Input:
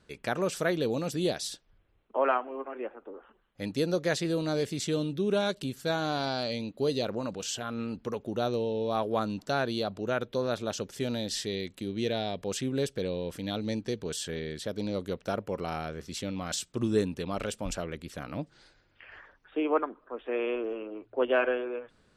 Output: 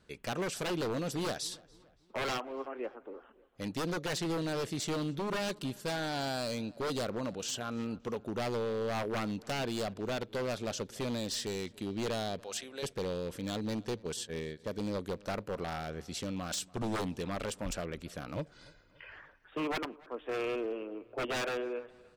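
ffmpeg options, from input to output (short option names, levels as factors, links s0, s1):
-filter_complex "[0:a]asplit=3[s0][s1][s2];[s0]afade=t=out:st=12.39:d=0.02[s3];[s1]highpass=740,afade=t=in:st=12.39:d=0.02,afade=t=out:st=12.82:d=0.02[s4];[s2]afade=t=in:st=12.82:d=0.02[s5];[s3][s4][s5]amix=inputs=3:normalize=0,asplit=3[s6][s7][s8];[s6]afade=t=out:st=13.98:d=0.02[s9];[s7]agate=range=0.0447:threshold=0.0178:ratio=16:detection=peak,afade=t=in:st=13.98:d=0.02,afade=t=out:st=14.64:d=0.02[s10];[s8]afade=t=in:st=14.64:d=0.02[s11];[s9][s10][s11]amix=inputs=3:normalize=0,asettb=1/sr,asplit=3[s12][s13][s14];[s12]atrim=end=18.364[s15];[s13]atrim=start=18.36:end=19.12,asetpts=PTS-STARTPTS,afade=t=in:d=0.004:c=qsin,afade=t=out:st=0.756:d=0.004:c=qsin,aecho=1:1:2:0.96,atrim=end_sample=33516[s16];[s14]atrim=start=19.116[s17];[s15][s16]acrossfade=d=0.004:c1=hsin:c2=qsin[s18];[s18][s17]acrossfade=d=0.004:c1=qsin:c2=hsin,aeval=exprs='0.0473*(abs(mod(val(0)/0.0473+3,4)-2)-1)':c=same,asplit=2[s19][s20];[s20]adelay=286,lowpass=f=3600:p=1,volume=0.0708,asplit=2[s21][s22];[s22]adelay=286,lowpass=f=3600:p=1,volume=0.49,asplit=2[s23][s24];[s24]adelay=286,lowpass=f=3600:p=1,volume=0.49[s25];[s19][s21][s23][s25]amix=inputs=4:normalize=0,volume=0.794"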